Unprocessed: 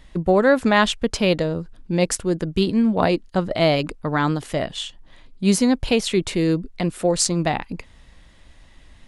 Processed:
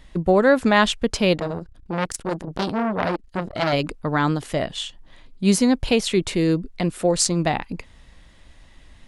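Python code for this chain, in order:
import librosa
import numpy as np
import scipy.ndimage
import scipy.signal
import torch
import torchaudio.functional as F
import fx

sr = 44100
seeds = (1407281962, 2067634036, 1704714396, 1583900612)

y = fx.transformer_sat(x, sr, knee_hz=1700.0, at=(1.36, 3.73))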